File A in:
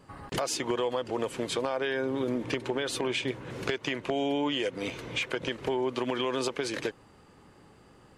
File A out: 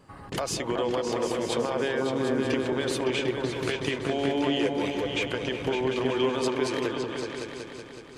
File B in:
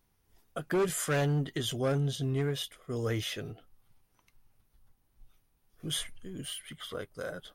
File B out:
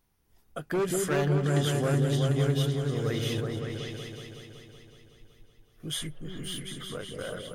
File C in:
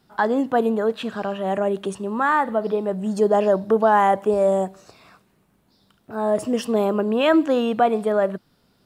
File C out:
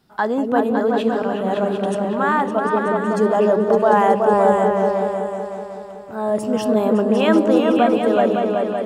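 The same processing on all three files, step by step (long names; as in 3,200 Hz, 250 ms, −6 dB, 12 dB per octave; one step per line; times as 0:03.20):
echo whose low-pass opens from repeat to repeat 187 ms, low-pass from 400 Hz, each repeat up 2 octaves, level 0 dB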